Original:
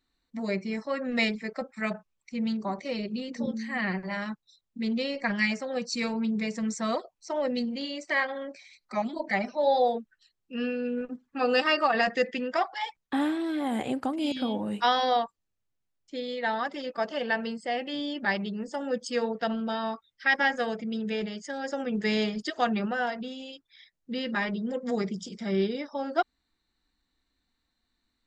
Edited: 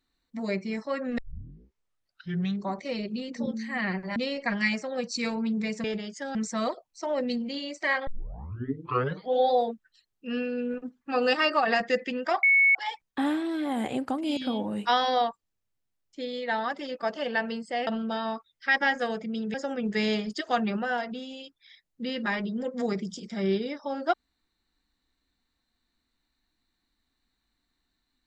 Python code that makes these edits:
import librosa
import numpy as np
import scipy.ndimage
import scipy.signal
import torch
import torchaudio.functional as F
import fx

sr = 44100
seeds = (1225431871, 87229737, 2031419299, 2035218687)

y = fx.edit(x, sr, fx.tape_start(start_s=1.18, length_s=1.52),
    fx.cut(start_s=4.16, length_s=0.78),
    fx.tape_start(start_s=8.34, length_s=1.45),
    fx.insert_tone(at_s=12.7, length_s=0.32, hz=2210.0, db=-16.5),
    fx.cut(start_s=17.82, length_s=1.63),
    fx.move(start_s=21.12, length_s=0.51, to_s=6.62), tone=tone)